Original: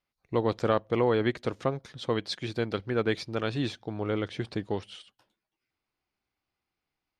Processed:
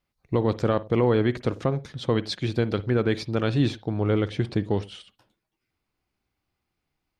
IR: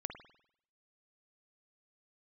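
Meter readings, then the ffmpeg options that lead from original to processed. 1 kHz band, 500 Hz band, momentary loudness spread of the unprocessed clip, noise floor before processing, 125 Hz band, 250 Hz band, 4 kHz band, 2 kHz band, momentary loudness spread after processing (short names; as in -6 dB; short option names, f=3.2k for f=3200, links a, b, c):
+1.0 dB, +3.5 dB, 9 LU, under -85 dBFS, +9.0 dB, +6.0 dB, +2.0 dB, +1.5 dB, 7 LU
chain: -filter_complex "[0:a]lowshelf=f=290:g=8.5,alimiter=limit=-15dB:level=0:latency=1:release=69,asplit=2[a][b];[1:a]atrim=start_sample=2205,atrim=end_sample=4410[c];[b][c]afir=irnorm=-1:irlink=0,volume=-6dB[d];[a][d]amix=inputs=2:normalize=0"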